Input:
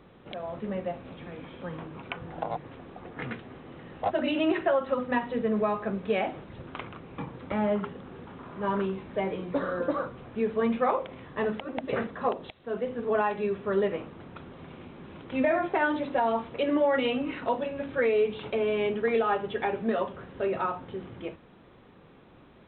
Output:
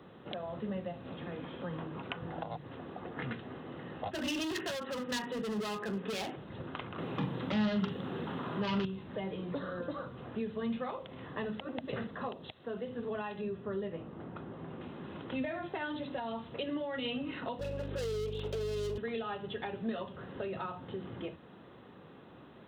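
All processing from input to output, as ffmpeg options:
-filter_complex "[0:a]asettb=1/sr,asplit=3[a][b][c];[a]atrim=end=4.114[d];[b]atrim=start=4.11:end=6.36,asetpts=PTS-STARTPTS,afade=t=in:d=0.004:c=qsin,afade=t=out:st=2.246:d=0.004:c=qsin,highpass=230,equalizer=f=420:t=q:w=4:g=4,equalizer=f=640:t=q:w=4:g=-5,equalizer=f=1.7k:t=q:w=4:g=3,lowpass=f=3.1k:w=0.5412,lowpass=f=3.1k:w=1.3066,acontrast=52,asoftclip=type=hard:threshold=-23.5dB[e];[c]atrim=start=6.356[f];[d][e]acrossfade=d=0.004:c1=hsin:c2=qsin[g];[g][f]acrossfade=d=0.004:c1=qsin:c2=hsin,asettb=1/sr,asplit=3[h][i][j];[h]atrim=end=6.984[k];[i]atrim=start=6.98:end=8.85,asetpts=PTS-STARTPTS,afade=t=in:d=0.004:c=qsin,afade=t=out:st=1.866:d=0.004:c=qsin,highpass=150,aeval=exprs='0.15*sin(PI/2*2.24*val(0)/0.15)':c=same,asplit=2[l][m];[m]adelay=42,volume=-10.5dB[n];[l][n]amix=inputs=2:normalize=0,atrim=end_sample=82467[o];[j]atrim=start=8.846[p];[k][o]acrossfade=d=0.004:c1=hsin:c2=qsin[q];[q][p]acrossfade=d=0.004:c1=qsin:c2=hsin,asettb=1/sr,asplit=3[r][s][t];[r]atrim=end=13.414[u];[s]atrim=start=13.41:end=14.81,asetpts=PTS-STARTPTS,afade=t=in:d=0.004:c=qsin,afade=t=out:st=1.396:d=0.004:c=qsin,highshelf=f=2.4k:g=-12,asplit=2[v][w];[w]adelay=18,volume=-10.5dB[x];[v][x]amix=inputs=2:normalize=0,atrim=end_sample=61740[y];[t]atrim=start=14.806[z];[u][y]acrossfade=d=0.004:c1=hsin:c2=qsin[aa];[aa][z]acrossfade=d=0.004:c1=qsin:c2=hsin,asettb=1/sr,asplit=3[ab][ac][ad];[ab]atrim=end=17.594[ae];[ac]atrim=start=17.59:end=18.98,asetpts=PTS-STARTPTS,afade=t=in:d=0.004:c=qsin,afade=t=out:st=1.386:d=0.004:c=qsin,asoftclip=type=hard:threshold=-32dB,highpass=f=420:t=q:w=4.1,aeval=exprs='val(0)+0.02*(sin(2*PI*50*n/s)+sin(2*PI*2*50*n/s)/2+sin(2*PI*3*50*n/s)/3+sin(2*PI*4*50*n/s)/4+sin(2*PI*5*50*n/s)/5)':c=same[af];[ad]atrim=start=18.976[ag];[ae][af]acrossfade=d=0.004:c1=hsin:c2=qsin[ah];[ah][ag]acrossfade=d=0.004:c1=qsin:c2=hsin,highpass=92,bandreject=f=2.3k:w=7.8,acrossover=split=170|3000[ai][aj][ak];[aj]acompressor=threshold=-39dB:ratio=6[al];[ai][al][ak]amix=inputs=3:normalize=0,volume=1dB"

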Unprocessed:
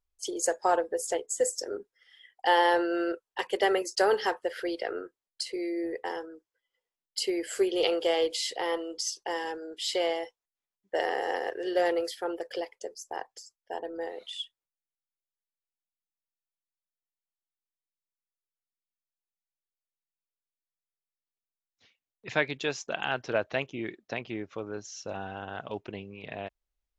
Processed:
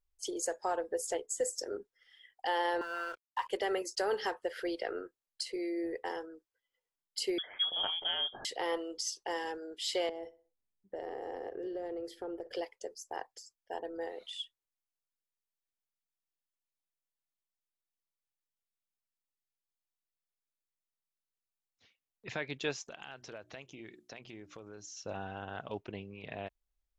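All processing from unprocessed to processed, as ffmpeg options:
-filter_complex "[0:a]asettb=1/sr,asplit=3[a][b][c];[a]atrim=end=2.814[d];[b]atrim=start=2.81:end=3.49,asetpts=PTS-STARTPTS,afade=t=in:d=0.004:c=qsin,afade=t=out:st=0.676:d=0.004:c=qsin,highpass=f=1k:t=q:w=7.1,aeval=exprs='sgn(val(0))*max(abs(val(0))-0.00282,0)':c=same[e];[c]atrim=start=3.486[f];[d][e]acrossfade=d=0.004:c1=hsin:c2=qsin[g];[g][f]acrossfade=d=0.004:c1=qsin:c2=hsin,asettb=1/sr,asplit=3[h][i][j];[h]atrim=end=7.384[k];[i]atrim=start=7.38:end=8.45,asetpts=PTS-STARTPTS,afade=t=in:d=0.004:c=qsin,afade=t=out:st=1.066:d=0.004:c=qsin,equalizer=f=770:w=0.75:g=-6.5,lowpass=f=3.1k:t=q:w=0.5098,lowpass=f=3.1k:t=q:w=0.6013,lowpass=f=3.1k:t=q:w=0.9,lowpass=f=3.1k:t=q:w=2.563,afreqshift=-3700[l];[j]atrim=start=8.446[m];[k][l]acrossfade=d=0.004:c1=hsin:c2=qsin[n];[n][m]acrossfade=d=0.004:c1=qsin:c2=hsin,asettb=1/sr,asplit=3[o][p][q];[o]atrim=end=10.094[r];[p]atrim=start=10.09:end=12.53,asetpts=PTS-STARTPTS,afade=t=in:d=0.004:c=qsin,afade=t=out:st=2.436:d=0.004:c=qsin,tiltshelf=f=700:g=10,acompressor=threshold=-33dB:ratio=6:attack=3.2:release=140:knee=1:detection=peak,asplit=2[s][t];[t]adelay=62,lowpass=f=2.7k:p=1,volume=-17dB,asplit=2[u][v];[v]adelay=62,lowpass=f=2.7k:p=1,volume=0.42,asplit=2[w][x];[x]adelay=62,lowpass=f=2.7k:p=1,volume=0.42,asplit=2[y][z];[z]adelay=62,lowpass=f=2.7k:p=1,volume=0.42[aa];[s][u][w][y][aa]amix=inputs=5:normalize=0,atrim=end_sample=107604[ab];[q]atrim=start=12.526[ac];[r][ab]acrossfade=d=0.004:c1=hsin:c2=qsin[ad];[ad][ac]acrossfade=d=0.004:c1=qsin:c2=hsin,asettb=1/sr,asplit=3[ae][af][ag];[ae]atrim=end=22.864[ah];[af]atrim=start=22.86:end=24.97,asetpts=PTS-STARTPTS,afade=t=in:d=0.004:c=qsin,afade=t=out:st=2.106:d=0.004:c=qsin,equalizer=f=8.9k:w=0.59:g=11.5,bandreject=f=60:t=h:w=6,bandreject=f=120:t=h:w=6,bandreject=f=180:t=h:w=6,bandreject=f=240:t=h:w=6,bandreject=f=300:t=h:w=6,bandreject=f=360:t=h:w=6,acompressor=threshold=-44dB:ratio=3:attack=3.2:release=140:knee=1:detection=peak[ai];[ag]atrim=start=24.966[aj];[ah][ai]acrossfade=d=0.004:c1=hsin:c2=qsin[ak];[ak][aj]acrossfade=d=0.004:c1=qsin:c2=hsin,lowshelf=f=78:g=6.5,alimiter=limit=-19dB:level=0:latency=1:release=155,volume=-4dB"

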